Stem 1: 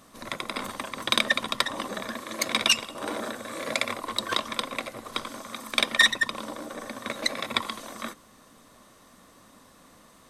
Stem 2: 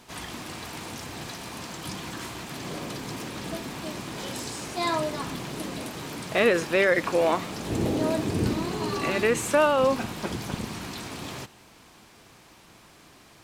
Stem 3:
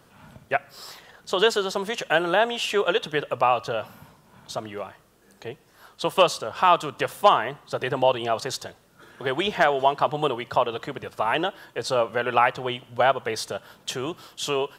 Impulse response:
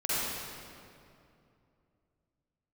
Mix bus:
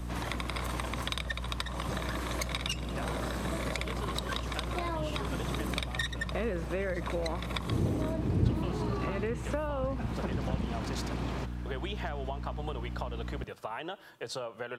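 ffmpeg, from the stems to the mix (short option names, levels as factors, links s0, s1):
-filter_complex "[0:a]highpass=f=410:w=0.5412,highpass=f=410:w=1.3066,volume=1.19[s0];[1:a]lowpass=f=1400:p=1,aeval=exprs='val(0)+0.0112*(sin(2*PI*60*n/s)+sin(2*PI*2*60*n/s)/2+sin(2*PI*3*60*n/s)/3+sin(2*PI*4*60*n/s)/4+sin(2*PI*5*60*n/s)/5)':c=same,volume=1.41[s1];[2:a]acompressor=threshold=0.0562:ratio=6,adelay=2450,volume=0.422[s2];[s0][s1][s2]amix=inputs=3:normalize=0,acrossover=split=140[s3][s4];[s4]acompressor=threshold=0.0224:ratio=6[s5];[s3][s5]amix=inputs=2:normalize=0"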